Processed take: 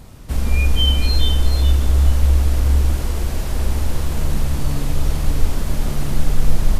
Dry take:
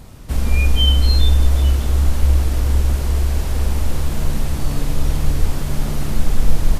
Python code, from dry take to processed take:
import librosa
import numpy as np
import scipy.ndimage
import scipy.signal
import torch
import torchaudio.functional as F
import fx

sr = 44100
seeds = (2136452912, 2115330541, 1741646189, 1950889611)

y = x + 10.0 ** (-7.5 / 20.0) * np.pad(x, (int(427 * sr / 1000.0), 0))[:len(x)]
y = F.gain(torch.from_numpy(y), -1.0).numpy()